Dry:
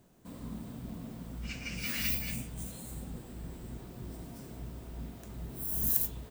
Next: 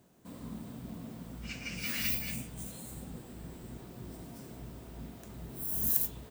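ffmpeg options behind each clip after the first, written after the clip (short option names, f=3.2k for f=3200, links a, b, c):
-af "highpass=f=91:p=1"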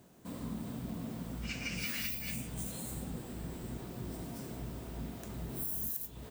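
-af "acompressor=threshold=-38dB:ratio=10,volume=4dB"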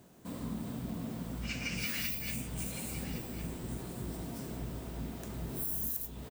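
-af "aecho=1:1:1110:0.251,volume=1.5dB"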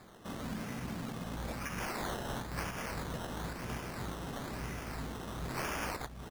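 -filter_complex "[0:a]crystalizer=i=2:c=0,acrossover=split=210[a][b];[b]acompressor=threshold=-38dB:ratio=3[c];[a][c]amix=inputs=2:normalize=0,acrusher=samples=15:mix=1:aa=0.000001:lfo=1:lforange=9:lforate=1,volume=-1.5dB"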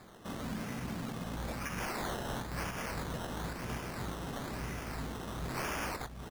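-af "volume=31.5dB,asoftclip=hard,volume=-31.5dB,volume=1dB"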